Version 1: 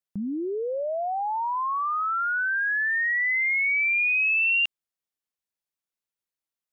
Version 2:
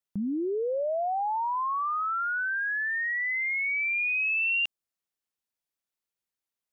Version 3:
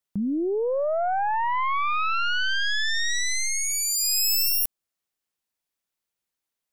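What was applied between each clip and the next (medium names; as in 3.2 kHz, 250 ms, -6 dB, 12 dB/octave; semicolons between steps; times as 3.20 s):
dynamic bell 2.1 kHz, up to -5 dB, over -37 dBFS, Q 0.87
tracing distortion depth 0.37 ms; trim +4 dB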